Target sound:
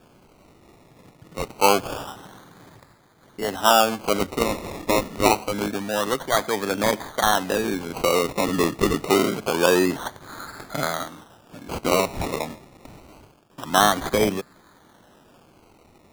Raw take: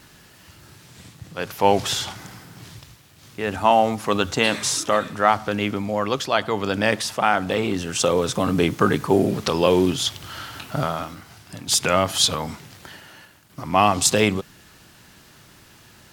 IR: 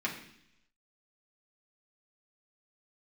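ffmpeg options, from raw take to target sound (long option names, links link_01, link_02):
-filter_complex "[0:a]acrossover=split=200 2900:gain=0.224 1 0.224[link_01][link_02][link_03];[link_01][link_02][link_03]amix=inputs=3:normalize=0,acrusher=samples=22:mix=1:aa=0.000001:lfo=1:lforange=13.2:lforate=0.26"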